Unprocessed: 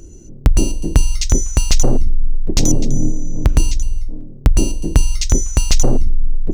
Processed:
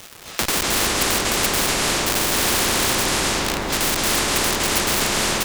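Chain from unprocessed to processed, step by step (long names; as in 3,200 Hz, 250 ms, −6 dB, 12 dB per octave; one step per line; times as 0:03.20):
adaptive Wiener filter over 25 samples
parametric band 640 Hz −9 dB 0.69 octaves
mains-hum notches 50/100/150/200/250/300/350/400/450 Hz
in parallel at −0.5 dB: downward compressor 8 to 1, threshold −17 dBFS, peak gain reduction 11.5 dB
on the sum: single-sideband voice off tune +86 Hz 160–2,500 Hz
comparator with hysteresis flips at −28.5 dBFS
surface crackle 590 per second −43 dBFS
tempo change 1.2×
bucket-brigade delay 150 ms, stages 1,024, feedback 80%, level −3.5 dB
convolution reverb RT60 1.3 s, pre-delay 233 ms, DRR −8.5 dB
every bin compressed towards the loudest bin 4 to 1
level −2 dB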